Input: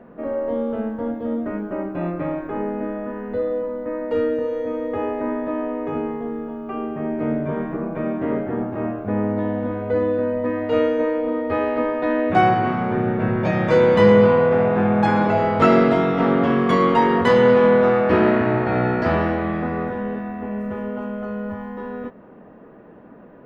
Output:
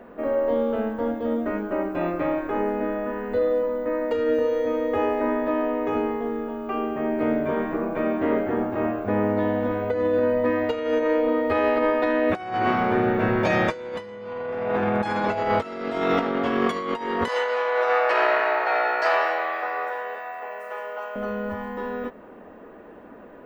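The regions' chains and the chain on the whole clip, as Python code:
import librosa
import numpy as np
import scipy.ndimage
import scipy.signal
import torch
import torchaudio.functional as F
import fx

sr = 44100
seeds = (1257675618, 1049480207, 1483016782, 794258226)

y = fx.chain(x, sr, fx.highpass(hz=570.0, slope=24),
    fx.peak_eq(hz=3400.0, db=-4.5, octaves=0.23), at=(17.28, 21.16))
y = fx.peak_eq(y, sr, hz=150.0, db=-12.0, octaves=0.9)
y = fx.over_compress(y, sr, threshold_db=-22.0, ratio=-0.5)
y = fx.high_shelf(y, sr, hz=3800.0, db=10.0)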